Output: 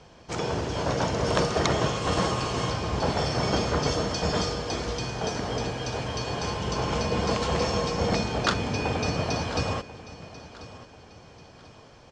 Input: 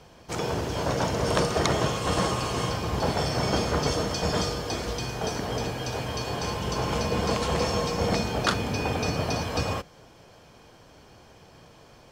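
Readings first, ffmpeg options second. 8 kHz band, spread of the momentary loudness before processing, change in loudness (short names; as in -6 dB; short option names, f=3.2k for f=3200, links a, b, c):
-1.0 dB, 6 LU, 0.0 dB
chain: -filter_complex "[0:a]lowpass=f=7.6k:w=0.5412,lowpass=f=7.6k:w=1.3066,asplit=2[a][b];[b]aecho=0:1:1040|2080|3120:0.141|0.0509|0.0183[c];[a][c]amix=inputs=2:normalize=0"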